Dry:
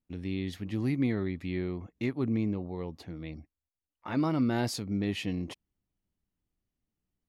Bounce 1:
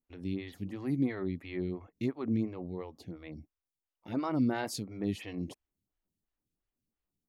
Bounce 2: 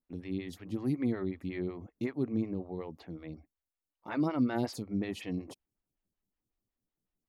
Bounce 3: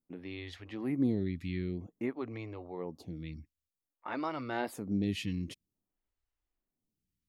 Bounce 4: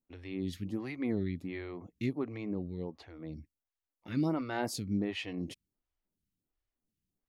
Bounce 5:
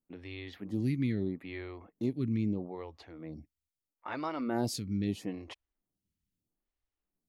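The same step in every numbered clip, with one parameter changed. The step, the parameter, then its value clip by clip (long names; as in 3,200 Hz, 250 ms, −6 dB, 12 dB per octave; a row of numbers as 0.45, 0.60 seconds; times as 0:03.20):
phaser with staggered stages, speed: 2.9, 5.4, 0.52, 1.4, 0.77 Hertz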